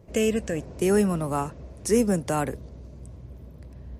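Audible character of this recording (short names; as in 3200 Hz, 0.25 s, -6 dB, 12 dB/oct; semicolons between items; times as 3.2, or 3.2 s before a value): noise floor -46 dBFS; spectral tilt -5.5 dB/oct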